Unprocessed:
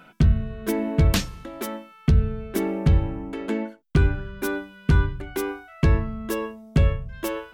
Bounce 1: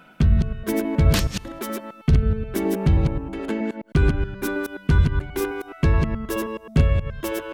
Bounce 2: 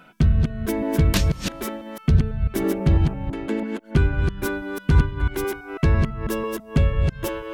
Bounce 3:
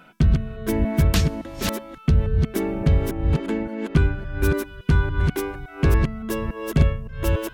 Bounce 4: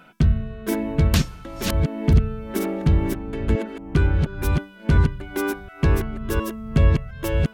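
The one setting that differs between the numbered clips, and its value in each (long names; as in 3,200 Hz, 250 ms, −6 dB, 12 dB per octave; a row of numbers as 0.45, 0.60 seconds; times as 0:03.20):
delay that plays each chunk backwards, delay time: 106, 165, 283, 711 milliseconds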